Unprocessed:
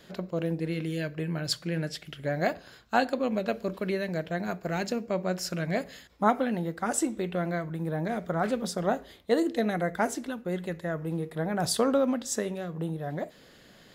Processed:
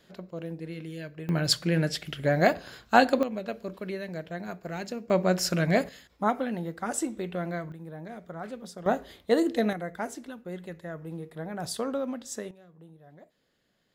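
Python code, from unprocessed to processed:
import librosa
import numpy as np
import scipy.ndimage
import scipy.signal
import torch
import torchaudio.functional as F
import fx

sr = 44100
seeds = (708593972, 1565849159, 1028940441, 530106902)

y = fx.gain(x, sr, db=fx.steps((0.0, -7.0), (1.29, 5.5), (3.23, -5.0), (5.1, 5.5), (5.89, -2.5), (7.72, -10.5), (8.86, 1.5), (9.73, -6.5), (12.51, -19.0)))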